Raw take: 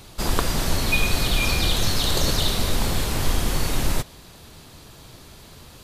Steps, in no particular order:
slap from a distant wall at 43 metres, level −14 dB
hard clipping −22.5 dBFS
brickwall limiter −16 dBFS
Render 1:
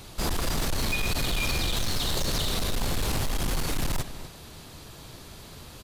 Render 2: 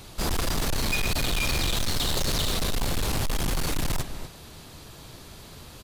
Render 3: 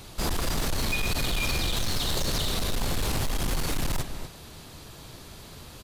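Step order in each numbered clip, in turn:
brickwall limiter, then slap from a distant wall, then hard clipping
slap from a distant wall, then hard clipping, then brickwall limiter
slap from a distant wall, then brickwall limiter, then hard clipping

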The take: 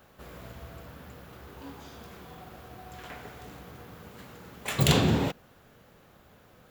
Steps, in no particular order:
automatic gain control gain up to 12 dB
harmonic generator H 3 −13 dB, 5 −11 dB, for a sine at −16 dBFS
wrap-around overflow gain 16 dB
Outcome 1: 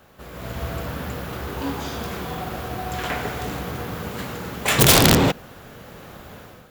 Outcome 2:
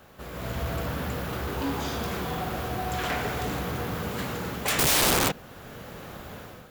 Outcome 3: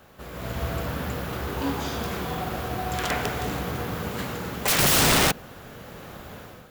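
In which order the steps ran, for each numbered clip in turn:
wrap-around overflow, then harmonic generator, then automatic gain control
automatic gain control, then wrap-around overflow, then harmonic generator
harmonic generator, then automatic gain control, then wrap-around overflow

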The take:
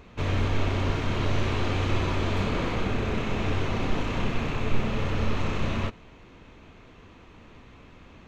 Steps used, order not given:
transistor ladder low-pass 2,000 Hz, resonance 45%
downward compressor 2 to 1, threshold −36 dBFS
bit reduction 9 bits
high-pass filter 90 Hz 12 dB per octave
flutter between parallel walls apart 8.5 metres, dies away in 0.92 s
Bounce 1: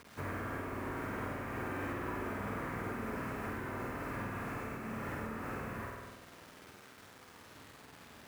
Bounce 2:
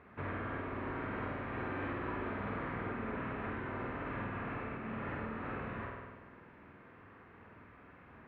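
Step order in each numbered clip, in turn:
transistor ladder low-pass, then bit reduction, then flutter between parallel walls, then downward compressor, then high-pass filter
flutter between parallel walls, then bit reduction, then transistor ladder low-pass, then downward compressor, then high-pass filter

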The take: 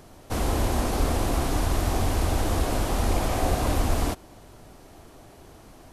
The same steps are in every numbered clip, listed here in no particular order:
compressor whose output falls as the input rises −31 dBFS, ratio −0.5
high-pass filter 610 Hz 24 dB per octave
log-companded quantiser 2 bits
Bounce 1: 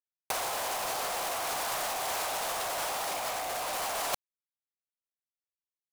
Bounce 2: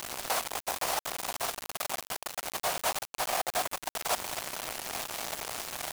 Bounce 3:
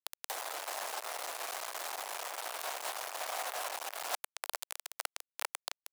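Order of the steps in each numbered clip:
high-pass filter, then log-companded quantiser, then compressor whose output falls as the input rises
compressor whose output falls as the input rises, then high-pass filter, then log-companded quantiser
log-companded quantiser, then compressor whose output falls as the input rises, then high-pass filter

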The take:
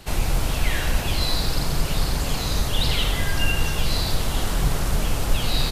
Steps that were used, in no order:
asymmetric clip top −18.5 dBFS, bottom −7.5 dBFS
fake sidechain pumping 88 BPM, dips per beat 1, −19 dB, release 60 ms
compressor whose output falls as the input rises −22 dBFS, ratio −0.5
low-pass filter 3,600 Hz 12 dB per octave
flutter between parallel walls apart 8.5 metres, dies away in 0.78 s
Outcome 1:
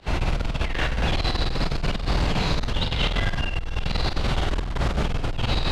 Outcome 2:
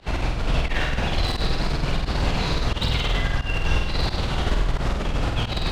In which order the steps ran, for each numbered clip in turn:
flutter between parallel walls, then fake sidechain pumping, then asymmetric clip, then low-pass filter, then compressor whose output falls as the input rises
low-pass filter, then compressor whose output falls as the input rises, then asymmetric clip, then flutter between parallel walls, then fake sidechain pumping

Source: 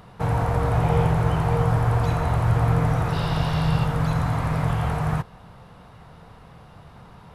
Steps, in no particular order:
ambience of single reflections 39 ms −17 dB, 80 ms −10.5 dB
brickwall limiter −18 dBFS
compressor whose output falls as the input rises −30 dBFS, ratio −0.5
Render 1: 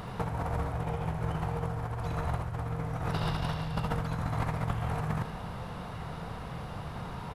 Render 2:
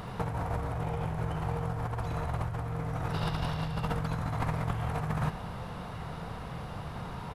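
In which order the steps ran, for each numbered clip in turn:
brickwall limiter, then compressor whose output falls as the input rises, then ambience of single reflections
ambience of single reflections, then brickwall limiter, then compressor whose output falls as the input rises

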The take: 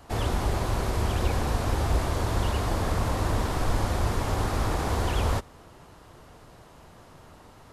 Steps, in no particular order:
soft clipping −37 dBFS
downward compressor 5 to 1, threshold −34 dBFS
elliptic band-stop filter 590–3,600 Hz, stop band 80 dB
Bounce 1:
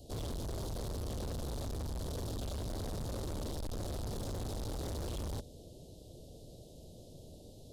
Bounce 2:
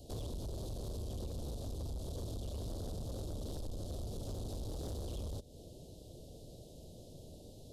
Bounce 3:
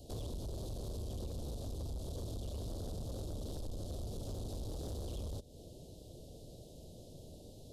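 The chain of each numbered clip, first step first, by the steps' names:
elliptic band-stop filter, then soft clipping, then downward compressor
elliptic band-stop filter, then downward compressor, then soft clipping
downward compressor, then elliptic band-stop filter, then soft clipping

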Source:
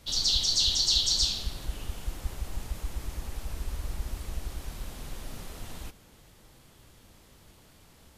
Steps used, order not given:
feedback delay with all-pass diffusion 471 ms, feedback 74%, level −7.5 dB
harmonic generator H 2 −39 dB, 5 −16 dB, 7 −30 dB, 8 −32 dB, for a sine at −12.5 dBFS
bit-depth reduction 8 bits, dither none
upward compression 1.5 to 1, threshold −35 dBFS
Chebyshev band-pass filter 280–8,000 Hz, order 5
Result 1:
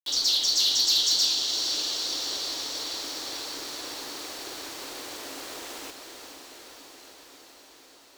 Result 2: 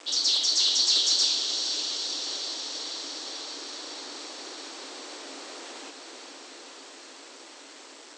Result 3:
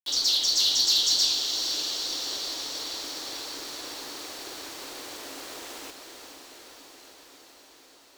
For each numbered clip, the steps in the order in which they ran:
Chebyshev band-pass filter, then bit-depth reduction, then upward compression, then feedback delay with all-pass diffusion, then harmonic generator
harmonic generator, then feedback delay with all-pass diffusion, then bit-depth reduction, then Chebyshev band-pass filter, then upward compression
Chebyshev band-pass filter, then bit-depth reduction, then harmonic generator, then upward compression, then feedback delay with all-pass diffusion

